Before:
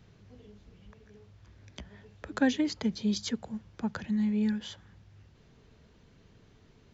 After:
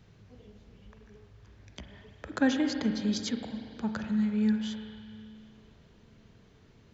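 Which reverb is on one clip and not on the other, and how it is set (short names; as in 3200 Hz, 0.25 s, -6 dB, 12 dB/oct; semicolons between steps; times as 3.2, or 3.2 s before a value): spring tank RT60 2.6 s, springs 37/46 ms, chirp 20 ms, DRR 5.5 dB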